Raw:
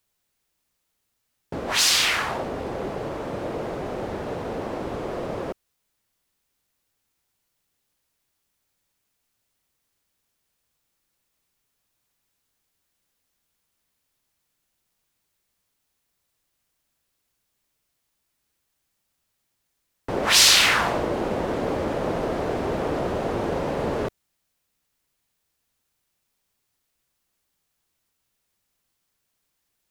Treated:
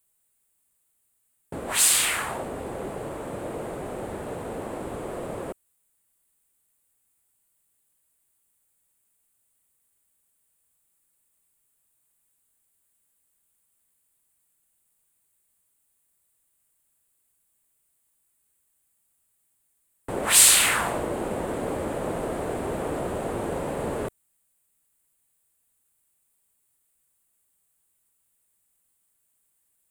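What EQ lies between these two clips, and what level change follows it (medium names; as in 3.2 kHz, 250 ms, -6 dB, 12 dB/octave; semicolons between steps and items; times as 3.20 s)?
resonant high shelf 6.9 kHz +8 dB, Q 3; -3.5 dB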